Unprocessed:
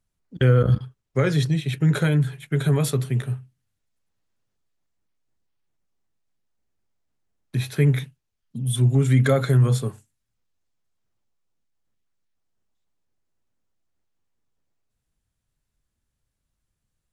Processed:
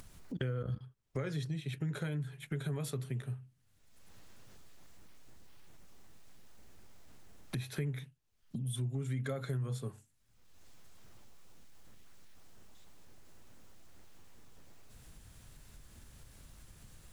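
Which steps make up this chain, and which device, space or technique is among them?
upward and downward compression (upward compressor, threshold -27 dBFS; compressor 4:1, threshold -32 dBFS, peak gain reduction 16.5 dB); gain -4.5 dB

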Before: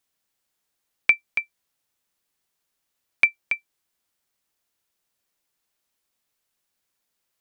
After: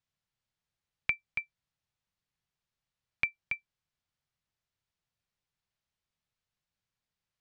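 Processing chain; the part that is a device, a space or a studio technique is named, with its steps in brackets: jukebox (LPF 5300 Hz 12 dB/oct; resonant low shelf 200 Hz +10 dB, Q 1.5; compressor 4:1, threshold -17 dBFS, peak gain reduction 5 dB); gain -8.5 dB

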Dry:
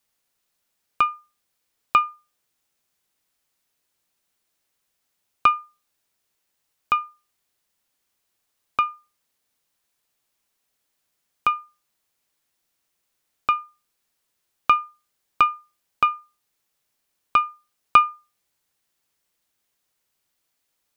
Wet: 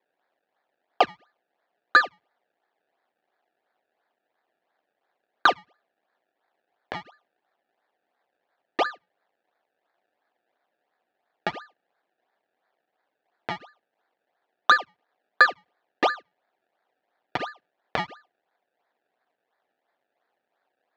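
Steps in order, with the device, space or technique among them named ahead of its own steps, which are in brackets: circuit-bent sampling toy (decimation with a swept rate 29×, swing 100% 2.9 Hz; speaker cabinet 480–4200 Hz, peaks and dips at 730 Hz +7 dB, 1100 Hz -3 dB, 1700 Hz +7 dB); gain -1 dB

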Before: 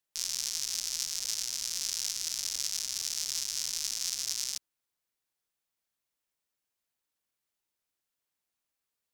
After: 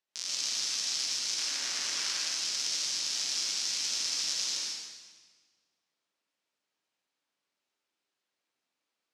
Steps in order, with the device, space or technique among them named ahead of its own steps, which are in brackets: 1.37–2.19 EQ curve 210 Hz 0 dB, 1600 Hz +8 dB, 3800 Hz -1 dB; supermarket ceiling speaker (BPF 200–5500 Hz; reverb RT60 1.6 s, pre-delay 80 ms, DRR -4.5 dB)

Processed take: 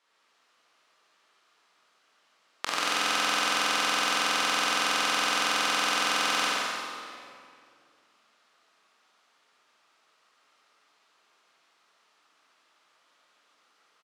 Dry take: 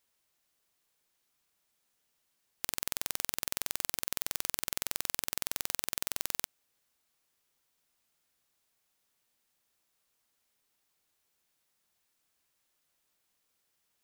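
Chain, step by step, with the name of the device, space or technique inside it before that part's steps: station announcement (BPF 360–4200 Hz; bell 1200 Hz +8.5 dB 0.48 oct; loudspeakers at several distances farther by 22 m -10 dB, 49 m -5 dB; reverb RT60 2.4 s, pre-delay 21 ms, DRR -5.5 dB); gain +8 dB

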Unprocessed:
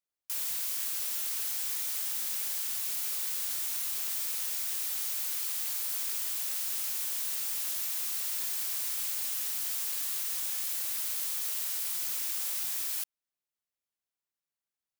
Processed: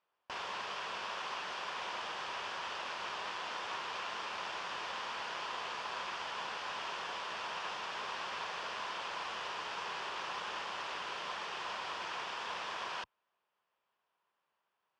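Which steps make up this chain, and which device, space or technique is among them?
guitar amplifier (tube stage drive 41 dB, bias 0.4; tone controls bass -10 dB, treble -13 dB; speaker cabinet 81–4500 Hz, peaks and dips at 120 Hz -4 dB, 280 Hz -9 dB, 1000 Hz +8 dB, 2100 Hz -7 dB, 4000 Hz -8 dB); gain +18 dB

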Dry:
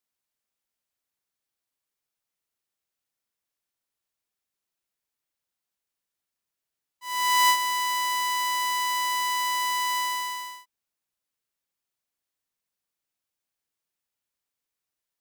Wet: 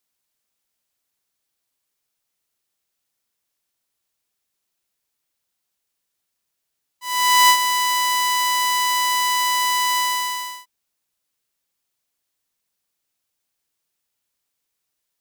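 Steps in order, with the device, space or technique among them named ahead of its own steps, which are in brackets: exciter from parts (in parallel at -9 dB: HPF 2300 Hz 12 dB/oct + soft clip -21.5 dBFS, distortion -9 dB); on the sum: gain +6.5 dB

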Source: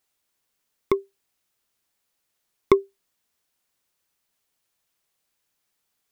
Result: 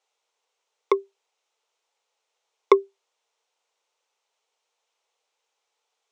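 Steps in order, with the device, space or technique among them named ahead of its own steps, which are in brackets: phone speaker on a table (speaker cabinet 450–6700 Hz, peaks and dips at 460 Hz +8 dB, 870 Hz +6 dB, 1700 Hz -7 dB, 4700 Hz -5 dB); gain +3 dB

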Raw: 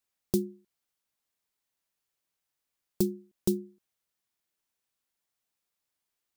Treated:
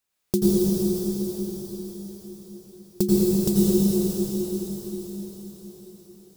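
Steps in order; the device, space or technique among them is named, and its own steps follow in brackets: cathedral (reverb RT60 5.6 s, pre-delay 80 ms, DRR -9 dB); gain +3.5 dB

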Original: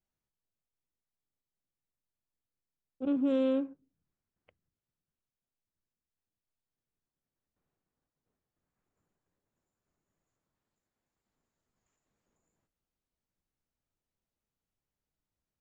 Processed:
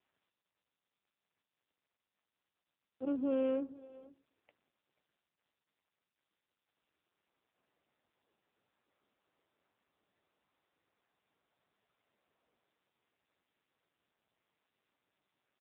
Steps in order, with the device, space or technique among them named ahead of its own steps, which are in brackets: satellite phone (BPF 320–3200 Hz; echo 0.487 s -20 dB; AMR-NB 6.7 kbps 8000 Hz)

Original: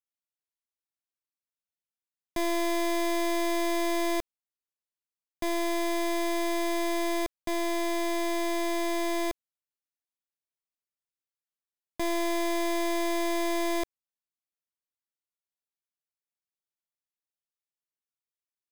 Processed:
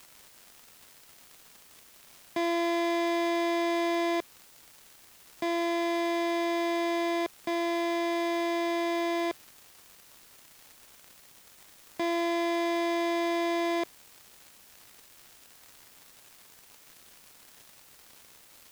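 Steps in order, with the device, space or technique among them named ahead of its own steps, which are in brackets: 78 rpm shellac record (BPF 190–4400 Hz; crackle 200/s -41 dBFS; white noise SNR 24 dB); gain +1 dB

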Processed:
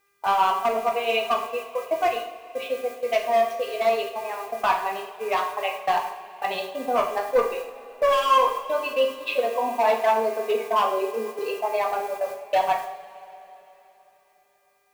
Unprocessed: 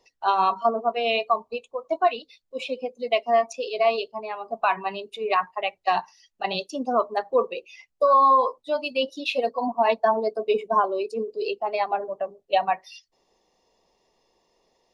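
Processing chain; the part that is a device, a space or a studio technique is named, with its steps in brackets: aircraft radio (BPF 370–2700 Hz; hard clip -17 dBFS, distortion -13 dB; buzz 400 Hz, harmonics 6, -48 dBFS 0 dB/oct; white noise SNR 24 dB; gate -35 dBFS, range -24 dB); 9.35–11.39 steep high-pass 150 Hz; two-slope reverb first 0.55 s, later 3.7 s, from -18 dB, DRR 0.5 dB

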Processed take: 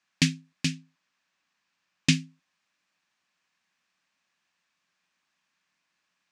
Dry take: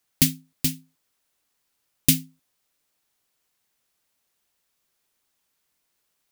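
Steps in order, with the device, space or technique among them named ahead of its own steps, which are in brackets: 0.75–2.13 LPF 9000 Hz; car door speaker (speaker cabinet 100–6600 Hz, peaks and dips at 120 Hz -9 dB, 180 Hz +8 dB, 430 Hz -10 dB, 1100 Hz +6 dB, 1700 Hz +8 dB, 2500 Hz +7 dB); gain -1.5 dB

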